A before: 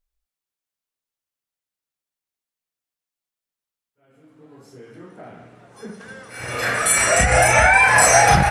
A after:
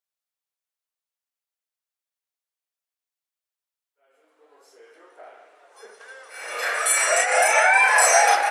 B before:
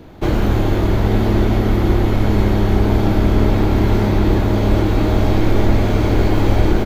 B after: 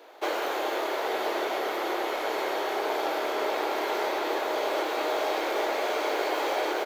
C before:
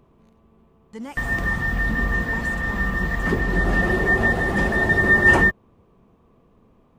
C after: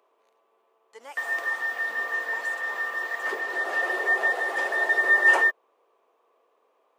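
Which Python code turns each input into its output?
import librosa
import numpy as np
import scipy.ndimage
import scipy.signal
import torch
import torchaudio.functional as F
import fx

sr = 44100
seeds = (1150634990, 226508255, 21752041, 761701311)

y = scipy.signal.sosfilt(scipy.signal.cheby2(4, 50, 180.0, 'highpass', fs=sr, output='sos'), x)
y = y * librosa.db_to_amplitude(-3.0)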